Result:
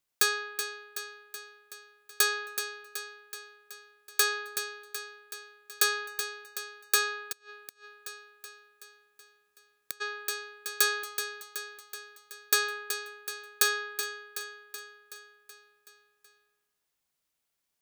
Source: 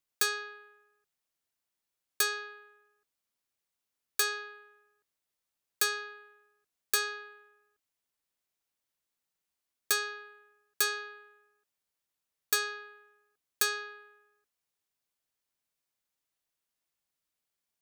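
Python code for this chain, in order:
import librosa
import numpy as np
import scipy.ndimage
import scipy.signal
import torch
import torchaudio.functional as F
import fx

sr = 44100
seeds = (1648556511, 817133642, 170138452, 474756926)

y = fx.echo_feedback(x, sr, ms=376, feedback_pct=59, wet_db=-8.5)
y = fx.gate_flip(y, sr, shuts_db=-29.0, range_db=-30, at=(7.31, 10.0), fade=0.02)
y = y * librosa.db_to_amplitude(3.5)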